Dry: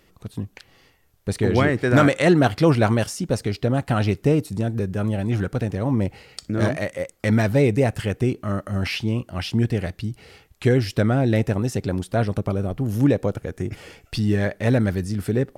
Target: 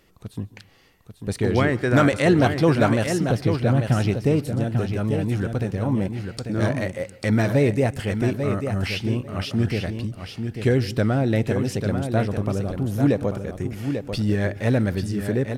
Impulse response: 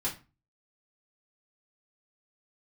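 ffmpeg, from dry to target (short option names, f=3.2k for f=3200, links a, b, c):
-filter_complex "[0:a]asettb=1/sr,asplit=3[a][b][c];[a]atrim=end=3.184[d];[b]atrim=start=3.18:end=3.99,asetpts=PTS-STARTPTS,afade=t=in:d=0.004:c=qsin,afade=t=out:st=0.806:d=0.004:c=qsin,equalizer=f=125:t=o:w=1:g=5,equalizer=f=1k:t=o:w=1:g=-5,equalizer=f=8k:t=o:w=1:g=-10[e];[c]atrim=start=3.986[f];[d][e]acrossfade=d=0.004:c1=hsin:c2=qsin[g];[g][f]acrossfade=d=0.004:c1=qsin:c2=hsin,aecho=1:1:843|1686|2529:0.447|0.067|0.0101,asplit=2[h][i];[1:a]atrim=start_sample=2205,adelay=131[j];[i][j]afir=irnorm=-1:irlink=0,volume=-25.5dB[k];[h][k]amix=inputs=2:normalize=0,volume=-1.5dB"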